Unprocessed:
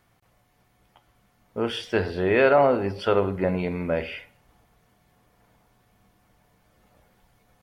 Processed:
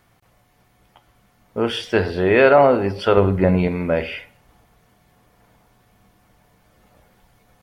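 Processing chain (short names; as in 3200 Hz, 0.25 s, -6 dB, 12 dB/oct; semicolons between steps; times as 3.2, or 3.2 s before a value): 3.17–3.68 low shelf 170 Hz +9 dB; gain +5.5 dB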